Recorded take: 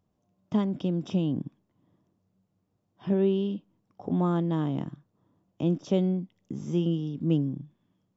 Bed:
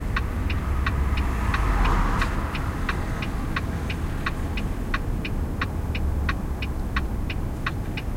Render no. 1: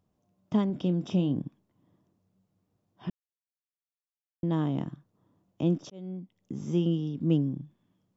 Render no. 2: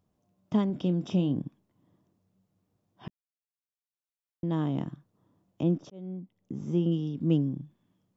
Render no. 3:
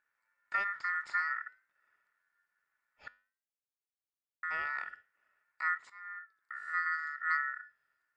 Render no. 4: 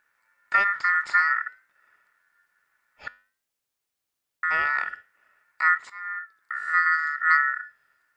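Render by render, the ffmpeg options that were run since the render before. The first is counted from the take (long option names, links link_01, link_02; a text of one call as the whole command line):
ffmpeg -i in.wav -filter_complex "[0:a]asettb=1/sr,asplit=3[link_01][link_02][link_03];[link_01]atrim=end=0.674[link_04];[link_02]atrim=start=0.67:end=1.44,asetpts=PTS-STARTPTS,afade=type=in:duration=0.004:curve=qsin,afade=type=out:start_time=0.766:duration=0.004:curve=qsin,asplit=2[link_05][link_06];[link_06]adelay=28,volume=-13dB[link_07];[link_05][link_07]amix=inputs=2:normalize=0,atrim=end_sample=33957[link_08];[link_03]atrim=start=1.436[link_09];[link_04][link_08]acrossfade=duration=0.004:curve1=hsin:curve2=qsin[link_10];[link_10][link_09]acrossfade=duration=0.004:curve1=qsin:curve2=hsin,asplit=4[link_11][link_12][link_13][link_14];[link_11]atrim=end=3.1,asetpts=PTS-STARTPTS,afade=type=out:start_time=3.096:duration=0.004:curve=hsin[link_15];[link_12]atrim=start=3.1:end=4.43,asetpts=PTS-STARTPTS,volume=0[link_16];[link_13]atrim=start=4.43:end=5.9,asetpts=PTS-STARTPTS,afade=type=in:duration=0.004:curve=hsin,afade=type=out:start_time=1.466:duration=0.004:curve=hsin[link_17];[link_14]atrim=start=5.9,asetpts=PTS-STARTPTS,afade=type=in:duration=0.73[link_18];[link_15][link_16][link_17][link_18]concat=n=4:v=0:a=1" out.wav
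ffmpeg -i in.wav -filter_complex "[0:a]asettb=1/sr,asplit=3[link_01][link_02][link_03];[link_01]atrim=end=5.634[link_04];[link_02]atrim=start=5.63:end=6.92,asetpts=PTS-STARTPTS,afade=type=in:duration=0.004:curve=qsin,afade=type=out:start_time=1.286:duration=0.004:curve=qsin,highshelf=frequency=2100:gain=-8.5[link_05];[link_03]atrim=start=6.916[link_06];[link_04][link_05]acrossfade=duration=0.004:curve1=hsin:curve2=qsin[link_07];[link_07][link_06]acrossfade=duration=0.004:curve1=qsin:curve2=hsin,asplit=2[link_08][link_09];[link_08]atrim=end=3.08,asetpts=PTS-STARTPTS,afade=type=out:start_time=3.076:duration=0.004:curve=hsin[link_10];[link_09]atrim=start=3.08,asetpts=PTS-STARTPTS,afade=type=in:duration=1.69[link_11];[link_10][link_11]concat=n=2:v=0:a=1" out.wav
ffmpeg -i in.wav -af "aeval=exprs='val(0)*sin(2*PI*1600*n/s)':channel_layout=same,flanger=delay=8.9:depth=2:regen=-85:speed=0.52:shape=sinusoidal" out.wav
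ffmpeg -i in.wav -af "volume=12dB" out.wav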